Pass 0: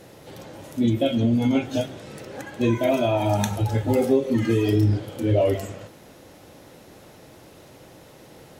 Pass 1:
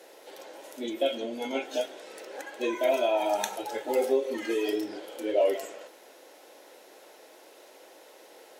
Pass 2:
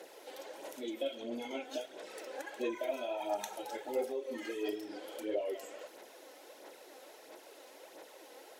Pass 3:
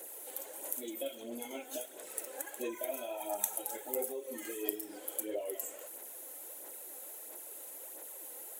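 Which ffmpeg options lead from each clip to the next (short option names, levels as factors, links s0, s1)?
-af "highpass=f=380:w=0.5412,highpass=f=380:w=1.3066,bandreject=f=1200:w=11,volume=0.75"
-af "acompressor=threshold=0.01:ratio=2,aphaser=in_gain=1:out_gain=1:delay=4:decay=0.46:speed=1.5:type=sinusoidal,volume=0.708"
-af "aexciter=amount=12.7:drive=3.6:freq=7400,volume=0.708"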